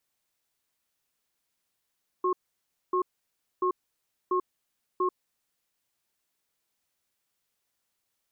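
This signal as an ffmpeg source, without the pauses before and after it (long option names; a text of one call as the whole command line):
ffmpeg -f lavfi -i "aevalsrc='0.0531*(sin(2*PI*367*t)+sin(2*PI*1080*t))*clip(min(mod(t,0.69),0.09-mod(t,0.69))/0.005,0,1)':duration=3.2:sample_rate=44100" out.wav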